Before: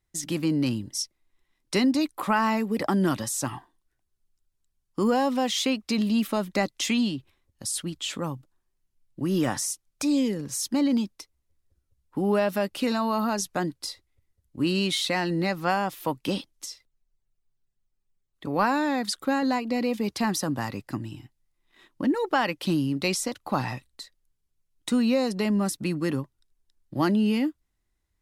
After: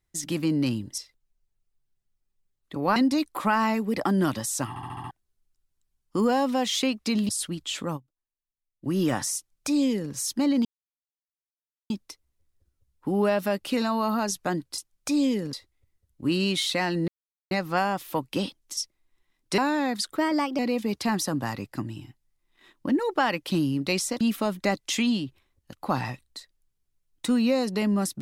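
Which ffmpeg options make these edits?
-filter_complex "[0:a]asplit=22[s0][s1][s2][s3][s4][s5][s6][s7][s8][s9][s10][s11][s12][s13][s14][s15][s16][s17][s18][s19][s20][s21];[s0]atrim=end=0.982[s22];[s1]atrim=start=16.688:end=18.672[s23];[s2]atrim=start=1.788:end=3.592[s24];[s3]atrim=start=3.518:end=3.592[s25];[s4]atrim=start=3.518:end=3.592[s26];[s5]atrim=start=3.518:end=3.592[s27];[s6]atrim=start=3.518:end=3.592[s28];[s7]atrim=start=3.518:end=3.592[s29];[s8]atrim=start=3.938:end=6.122[s30];[s9]atrim=start=7.638:end=8.49,asetpts=PTS-STARTPTS,afade=t=out:st=0.672:d=0.18:c=exp:silence=0.0944061[s31];[s10]atrim=start=8.49:end=9.02,asetpts=PTS-STARTPTS,volume=0.0944[s32];[s11]atrim=start=9.02:end=11,asetpts=PTS-STARTPTS,afade=t=in:d=0.18:c=exp:silence=0.0944061,afade=t=out:st=1.976:d=0.004:c=hsin,apad=pad_dur=1.25[s33];[s12]atrim=start=11:end=13.882,asetpts=PTS-STARTPTS,afade=t=in:d=0.004:c=hsin[s34];[s13]atrim=start=9.718:end=10.472[s35];[s14]atrim=start=13.878:end=15.43,asetpts=PTS-STARTPTS,afade=t=out:st=1.548:d=0.004:c=hsin,apad=pad_dur=0.43[s36];[s15]atrim=start=15.43:end=16.692,asetpts=PTS-STARTPTS,afade=t=in:d=0.004:c=hsin[s37];[s16]atrim=start=0.978:end=1.792[s38];[s17]atrim=start=18.668:end=19.264[s39];[s18]atrim=start=19.26:end=19.74,asetpts=PTS-STARTPTS,asetrate=50715,aresample=44100[s40];[s19]atrim=start=19.736:end=23.362[s41];[s20]atrim=start=6.118:end=7.642[s42];[s21]atrim=start=23.358[s43];[s22][s23]acrossfade=d=0.004:c1=hsin:c2=hsin[s44];[s44][s24]acrossfade=d=0.004:c1=hsin:c2=hsin[s45];[s45][s25]acrossfade=d=0.004:c1=hsin:c2=hsin[s46];[s46][s26]acrossfade=d=0.004:c1=hsin:c2=hsin[s47];[s47][s27]acrossfade=d=0.004:c1=hsin:c2=hsin[s48];[s48][s28]acrossfade=d=0.004:c1=hsin:c2=hsin[s49];[s49][s29]acrossfade=d=0.004:c1=hsin:c2=hsin[s50];[s50][s30]acrossfade=d=0.004:c1=hsin:c2=hsin[s51];[s31][s32][s33][s34]concat=n=4:v=0:a=1[s52];[s51][s52]acrossfade=d=0.004:c1=hsin:c2=hsin[s53];[s53][s35]acrossfade=d=0.004:c1=hsin:c2=hsin[s54];[s36][s37]concat=n=2:v=0:a=1[s55];[s54][s55]acrossfade=d=0.004:c1=hsin:c2=hsin[s56];[s56][s38]acrossfade=d=0.004:c1=hsin:c2=hsin[s57];[s57][s39]acrossfade=d=0.004:c1=hsin:c2=hsin[s58];[s58][s40]acrossfade=d=0.004:c1=hsin:c2=hsin[s59];[s59][s41]acrossfade=d=0.004:c1=hsin:c2=hsin[s60];[s60][s42]acrossfade=d=0.004:c1=hsin:c2=hsin[s61];[s61][s43]acrossfade=d=0.004:c1=hsin:c2=hsin"

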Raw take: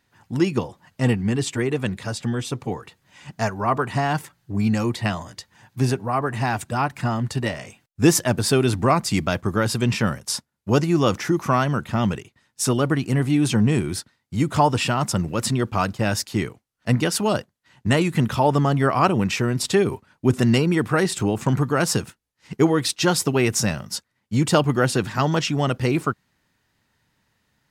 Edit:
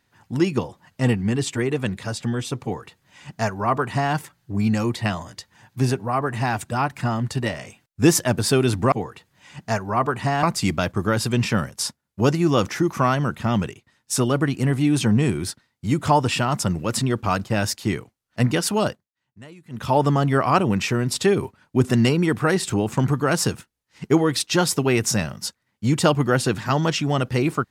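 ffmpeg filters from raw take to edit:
-filter_complex "[0:a]asplit=5[s0][s1][s2][s3][s4];[s0]atrim=end=8.922[s5];[s1]atrim=start=2.628:end=4.142[s6];[s2]atrim=start=8.918:end=17.6,asetpts=PTS-STARTPTS,afade=t=out:st=8.452:d=0.23:silence=0.0630957[s7];[s3]atrim=start=17.6:end=18.19,asetpts=PTS-STARTPTS,volume=0.0631[s8];[s4]atrim=start=18.19,asetpts=PTS-STARTPTS,afade=t=in:d=0.23:silence=0.0630957[s9];[s5][s6]acrossfade=d=0.004:c1=hsin:c2=hsin[s10];[s7][s8][s9]concat=n=3:v=0:a=1[s11];[s10][s11]acrossfade=d=0.004:c1=hsin:c2=hsin"

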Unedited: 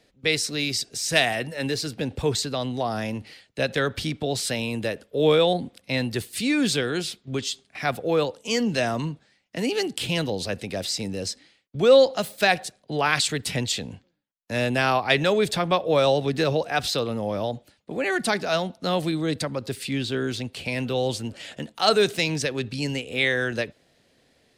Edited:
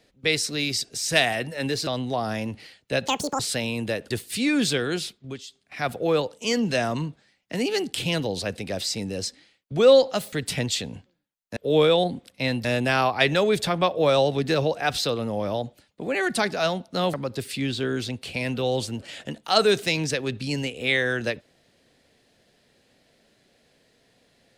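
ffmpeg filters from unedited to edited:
-filter_complex "[0:a]asplit=11[s0][s1][s2][s3][s4][s5][s6][s7][s8][s9][s10];[s0]atrim=end=1.872[s11];[s1]atrim=start=2.538:end=3.754[s12];[s2]atrim=start=3.75:end=4.35,asetpts=PTS-STARTPTS,asetrate=83790,aresample=44100,atrim=end_sample=13926,asetpts=PTS-STARTPTS[s13];[s3]atrim=start=4.346:end=5.062[s14];[s4]atrim=start=6.138:end=7.48,asetpts=PTS-STARTPTS,afade=t=out:st=0.882:d=0.46:silence=0.223872[s15];[s5]atrim=start=7.48:end=7.53,asetpts=PTS-STARTPTS,volume=0.224[s16];[s6]atrim=start=7.53:end=12.362,asetpts=PTS-STARTPTS,afade=t=in:d=0.46:silence=0.223872[s17];[s7]atrim=start=13.298:end=14.542[s18];[s8]atrim=start=5.058:end=6.142[s19];[s9]atrim=start=14.538:end=19.032[s20];[s10]atrim=start=19.448[s21];[s11][s12]acrossfade=d=0.004:c1=hsin:c2=hsin[s22];[s22][s13]acrossfade=d=0.004:c1=hsin:c2=hsin[s23];[s23][s14]acrossfade=d=0.004:c1=hsin:c2=hsin[s24];[s15][s16][s17]concat=n=3:v=0:a=1[s25];[s24][s25]acrossfade=d=0.004:c1=hsin:c2=hsin[s26];[s26][s18]acrossfade=d=0.004:c1=hsin:c2=hsin[s27];[s27][s19]acrossfade=d=0.004:c1=hsin:c2=hsin[s28];[s28][s20]acrossfade=d=0.004:c1=hsin:c2=hsin[s29];[s29][s21]acrossfade=d=0.004:c1=hsin:c2=hsin"

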